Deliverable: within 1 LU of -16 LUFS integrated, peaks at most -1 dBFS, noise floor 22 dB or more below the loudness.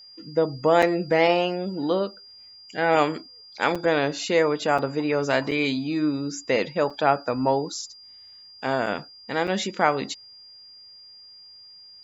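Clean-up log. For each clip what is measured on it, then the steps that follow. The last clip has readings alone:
dropouts 7; longest dropout 5.3 ms; steady tone 4800 Hz; tone level -45 dBFS; loudness -24.0 LUFS; peak -5.0 dBFS; loudness target -16.0 LUFS
-> interpolate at 0.82/3.75/4.78/5.51/6.9/8.86/9.47, 5.3 ms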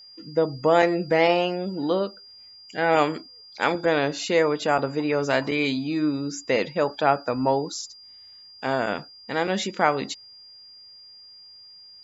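dropouts 0; steady tone 4800 Hz; tone level -45 dBFS
-> notch 4800 Hz, Q 30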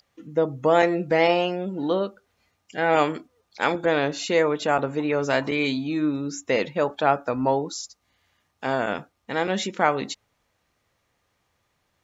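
steady tone none; loudness -24.0 LUFS; peak -5.0 dBFS; loudness target -16.0 LUFS
-> gain +8 dB; limiter -1 dBFS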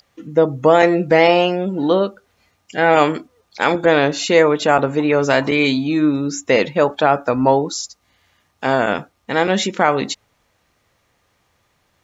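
loudness -16.5 LUFS; peak -1.0 dBFS; noise floor -65 dBFS

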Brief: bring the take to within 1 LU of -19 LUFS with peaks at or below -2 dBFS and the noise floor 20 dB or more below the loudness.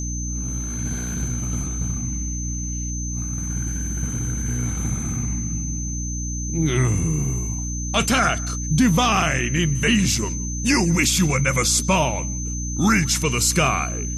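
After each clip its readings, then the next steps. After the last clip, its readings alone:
hum 60 Hz; harmonics up to 300 Hz; hum level -25 dBFS; steady tone 6200 Hz; tone level -30 dBFS; loudness -21.5 LUFS; peak -7.0 dBFS; loudness target -19.0 LUFS
-> de-hum 60 Hz, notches 5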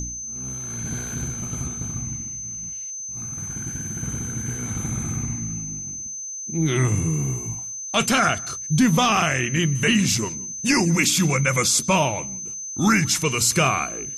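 hum none; steady tone 6200 Hz; tone level -30 dBFS
-> notch 6200 Hz, Q 30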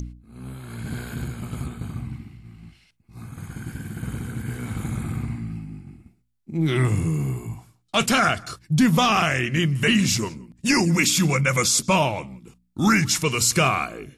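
steady tone none; loudness -22.0 LUFS; peak -8.0 dBFS; loudness target -19.0 LUFS
-> gain +3 dB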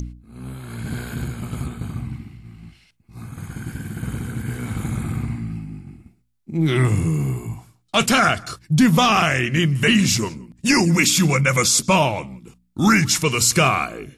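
loudness -19.0 LUFS; peak -5.0 dBFS; noise floor -62 dBFS

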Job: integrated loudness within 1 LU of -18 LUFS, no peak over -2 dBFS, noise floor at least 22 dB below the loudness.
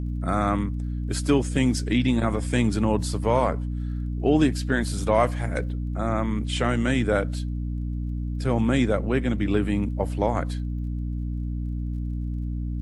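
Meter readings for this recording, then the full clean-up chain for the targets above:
ticks 25/s; hum 60 Hz; harmonics up to 300 Hz; hum level -26 dBFS; loudness -25.5 LUFS; peak -7.5 dBFS; loudness target -18.0 LUFS
-> de-click; notches 60/120/180/240/300 Hz; gain +7.5 dB; limiter -2 dBFS

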